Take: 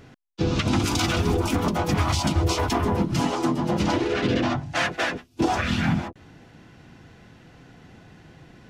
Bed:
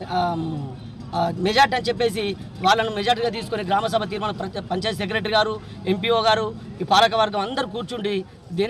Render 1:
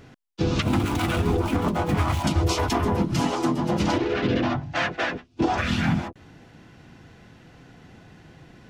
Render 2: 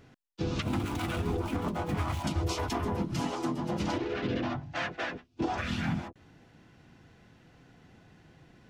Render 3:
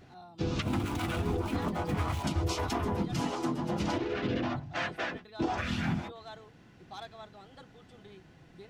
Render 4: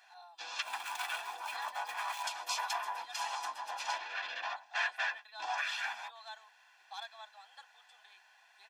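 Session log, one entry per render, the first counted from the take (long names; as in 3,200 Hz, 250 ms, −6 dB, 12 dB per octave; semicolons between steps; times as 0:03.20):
0:00.62–0:02.24: running median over 9 samples; 0:03.98–0:05.58: high-frequency loss of the air 110 metres
level −8.5 dB
mix in bed −29 dB
high-pass filter 890 Hz 24 dB per octave; comb filter 1.2 ms, depth 62%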